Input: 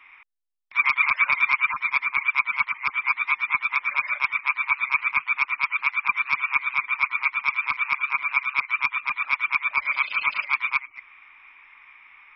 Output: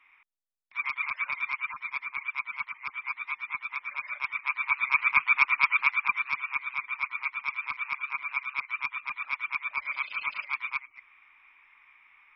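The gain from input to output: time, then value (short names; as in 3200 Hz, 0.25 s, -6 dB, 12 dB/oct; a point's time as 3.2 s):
3.99 s -11 dB
5.23 s +1 dB
5.73 s +1 dB
6.45 s -8.5 dB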